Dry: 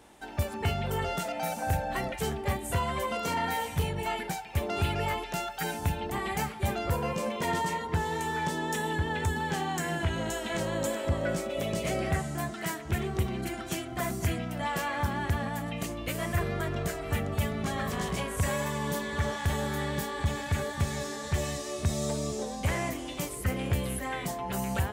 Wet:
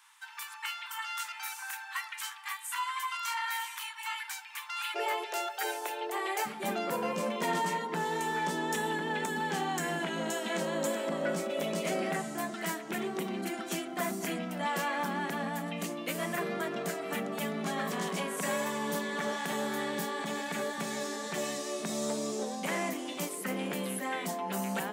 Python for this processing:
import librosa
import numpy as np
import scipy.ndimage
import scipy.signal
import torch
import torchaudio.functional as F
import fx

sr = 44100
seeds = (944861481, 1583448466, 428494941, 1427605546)

y = fx.steep_highpass(x, sr, hz=fx.steps((0.0, 940.0), (4.94, 340.0), (6.45, 170.0)), slope=72)
y = fx.transformer_sat(y, sr, knee_hz=610.0)